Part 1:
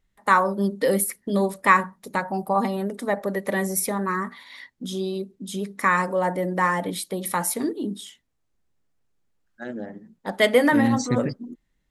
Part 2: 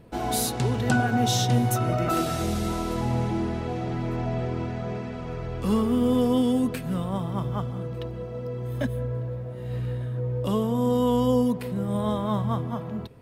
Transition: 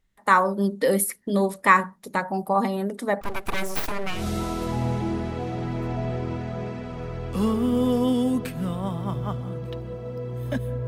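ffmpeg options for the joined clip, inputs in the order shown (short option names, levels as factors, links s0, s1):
-filter_complex "[0:a]asettb=1/sr,asplit=3[s0][s1][s2];[s0]atrim=end=3.214[s3];[s1]atrim=start=3.21:end=4.27,asetpts=PTS-STARTPTS,afade=t=in:d=0.004:c=qsin,afade=t=out:st=1.056:d=0.004:c=qsin,aeval=exprs='abs(val(0))':c=same[s4];[s2]atrim=start=4.266[s5];[s3][s4]acrossfade=d=0.004:c1=hsin:c2=qsin[s6];[s6][s5]acrossfade=d=0.004:c1=qsin:c2=hsin,apad=whole_dur=10.87,atrim=end=10.87,atrim=end=4.27,asetpts=PTS-STARTPTS[s7];[1:a]atrim=start=2.38:end=9.16,asetpts=PTS-STARTPTS[s8];[s7][s8]acrossfade=d=0.18:c1=tri:c2=tri"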